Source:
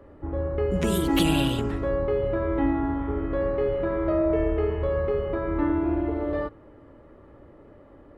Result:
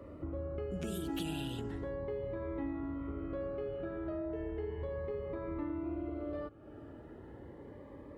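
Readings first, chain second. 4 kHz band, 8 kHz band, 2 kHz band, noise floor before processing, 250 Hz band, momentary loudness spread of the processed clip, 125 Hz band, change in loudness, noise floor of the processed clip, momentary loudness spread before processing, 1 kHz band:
−15.5 dB, can't be measured, −15.5 dB, −51 dBFS, −13.5 dB, 13 LU, −13.5 dB, −14.0 dB, −51 dBFS, 6 LU, −16.0 dB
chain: high-pass filter 58 Hz
downward compressor 3 to 1, threshold −42 dBFS, peak gain reduction 17.5 dB
phaser whose notches keep moving one way rising 0.35 Hz
level +1.5 dB

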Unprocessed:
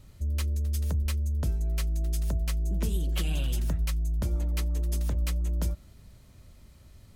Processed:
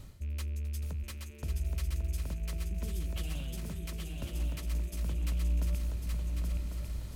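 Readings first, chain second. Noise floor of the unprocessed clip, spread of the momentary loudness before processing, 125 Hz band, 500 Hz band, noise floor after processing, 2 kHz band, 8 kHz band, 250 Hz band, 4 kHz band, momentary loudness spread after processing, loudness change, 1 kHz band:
−54 dBFS, 1 LU, −5.5 dB, −6.0 dB, −44 dBFS, −5.0 dB, −6.0 dB, −5.5 dB, −6.0 dB, 7 LU, −6.5 dB, −5.5 dB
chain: loose part that buzzes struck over −34 dBFS, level −40 dBFS
reversed playback
downward compressor 12 to 1, threshold −40 dBFS, peak gain reduction 17 dB
reversed playback
feedback echo with a long and a short gap by turns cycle 1,098 ms, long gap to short 3 to 1, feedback 45%, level −3.5 dB
level +6 dB

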